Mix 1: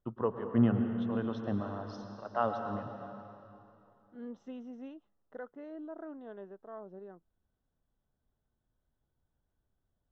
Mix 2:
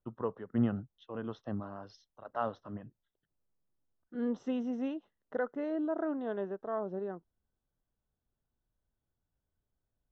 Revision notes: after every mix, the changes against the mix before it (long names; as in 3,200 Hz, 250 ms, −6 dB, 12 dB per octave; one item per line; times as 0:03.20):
second voice +10.5 dB
reverb: off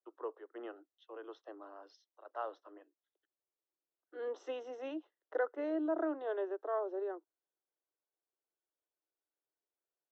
first voice −6.0 dB
master: add Butterworth high-pass 300 Hz 96 dB per octave